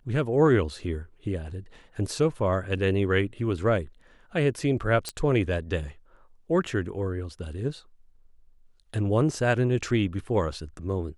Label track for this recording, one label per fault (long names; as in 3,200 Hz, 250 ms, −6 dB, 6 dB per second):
5.090000	5.090000	click −15 dBFS